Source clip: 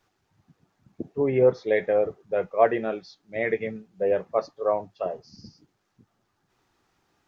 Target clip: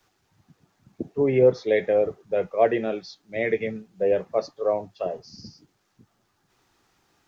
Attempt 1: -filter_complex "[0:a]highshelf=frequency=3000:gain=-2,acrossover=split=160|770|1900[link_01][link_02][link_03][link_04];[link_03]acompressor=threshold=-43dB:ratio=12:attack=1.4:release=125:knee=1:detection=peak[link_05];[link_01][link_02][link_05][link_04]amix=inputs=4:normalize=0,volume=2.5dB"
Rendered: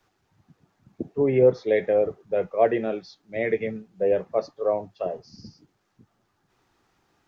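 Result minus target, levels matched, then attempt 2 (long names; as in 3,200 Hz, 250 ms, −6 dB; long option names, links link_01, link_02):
8,000 Hz band −5.5 dB
-filter_complex "[0:a]highshelf=frequency=3000:gain=5,acrossover=split=160|770|1900[link_01][link_02][link_03][link_04];[link_03]acompressor=threshold=-43dB:ratio=12:attack=1.4:release=125:knee=1:detection=peak[link_05];[link_01][link_02][link_05][link_04]amix=inputs=4:normalize=0,volume=2.5dB"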